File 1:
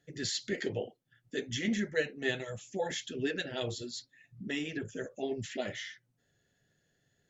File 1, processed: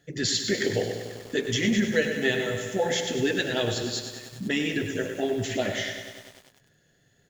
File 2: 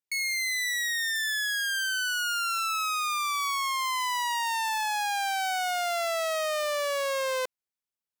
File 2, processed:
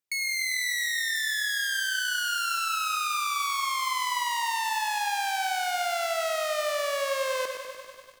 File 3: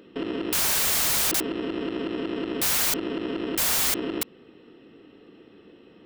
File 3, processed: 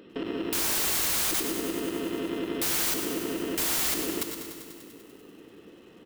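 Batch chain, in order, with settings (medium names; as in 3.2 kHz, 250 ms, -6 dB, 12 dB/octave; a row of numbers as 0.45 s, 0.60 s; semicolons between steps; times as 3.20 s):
feedback delay 116 ms, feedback 37%, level -11 dB; in parallel at +2 dB: compression 16:1, threshold -32 dBFS; on the sum: bit-crushed delay 98 ms, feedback 80%, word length 8-bit, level -10 dB; normalise loudness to -27 LUFS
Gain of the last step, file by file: +2.5 dB, -5.0 dB, -7.0 dB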